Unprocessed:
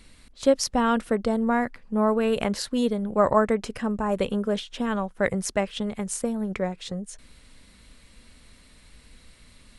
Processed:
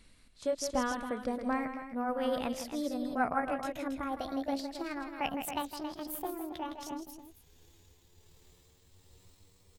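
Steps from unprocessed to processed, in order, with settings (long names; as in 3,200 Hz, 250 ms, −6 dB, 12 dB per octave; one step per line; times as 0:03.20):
pitch glide at a constant tempo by +11.5 semitones starting unshifted
loudspeakers that aren't time-aligned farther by 55 metres −9 dB, 94 metres −9 dB
amplitude tremolo 1.3 Hz, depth 30%
level −8.5 dB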